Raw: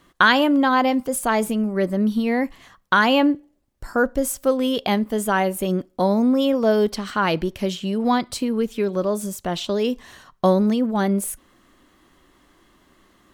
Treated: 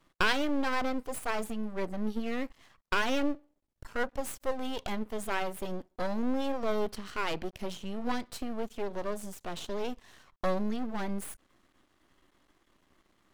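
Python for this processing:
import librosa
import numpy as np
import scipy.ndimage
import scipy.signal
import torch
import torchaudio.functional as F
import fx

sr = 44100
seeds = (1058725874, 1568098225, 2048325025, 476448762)

y = fx.high_shelf(x, sr, hz=12000.0, db=-6.0)
y = np.maximum(y, 0.0)
y = y * 10.0 ** (-7.5 / 20.0)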